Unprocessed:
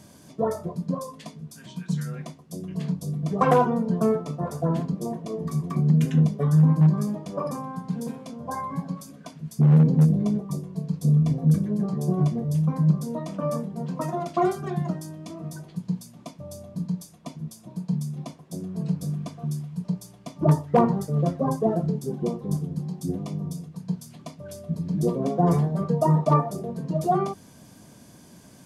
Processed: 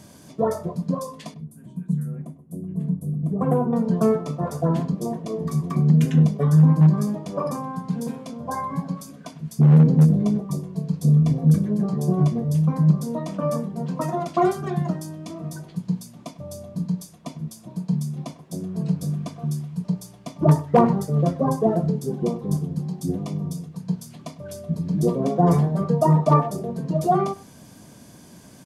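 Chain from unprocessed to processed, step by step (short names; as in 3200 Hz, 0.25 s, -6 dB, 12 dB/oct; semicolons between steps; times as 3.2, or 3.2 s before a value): 1.34–3.73 EQ curve 250 Hz 0 dB, 5300 Hz -28 dB, 9400 Hz -7 dB; speakerphone echo 0.1 s, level -18 dB; gain +3 dB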